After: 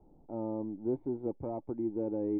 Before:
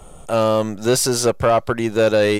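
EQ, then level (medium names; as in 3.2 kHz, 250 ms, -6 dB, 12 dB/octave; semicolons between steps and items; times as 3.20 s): cascade formant filter u; -6.0 dB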